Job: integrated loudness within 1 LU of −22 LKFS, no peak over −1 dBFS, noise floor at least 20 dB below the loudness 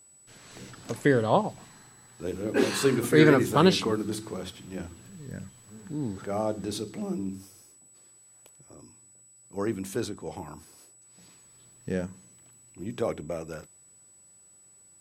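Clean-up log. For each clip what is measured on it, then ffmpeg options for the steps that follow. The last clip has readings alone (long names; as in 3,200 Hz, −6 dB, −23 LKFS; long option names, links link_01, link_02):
interfering tone 7,900 Hz; level of the tone −54 dBFS; integrated loudness −27.5 LKFS; sample peak −5.0 dBFS; target loudness −22.0 LKFS
→ -af "bandreject=frequency=7900:width=30"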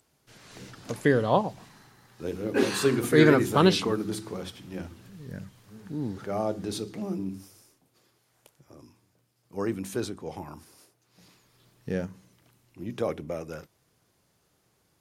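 interfering tone none found; integrated loudness −27.5 LKFS; sample peak −5.0 dBFS; target loudness −22.0 LKFS
→ -af "volume=5.5dB,alimiter=limit=-1dB:level=0:latency=1"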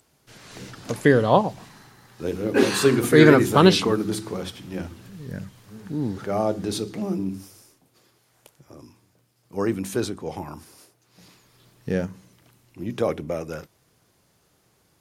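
integrated loudness −22.0 LKFS; sample peak −1.0 dBFS; background noise floor −65 dBFS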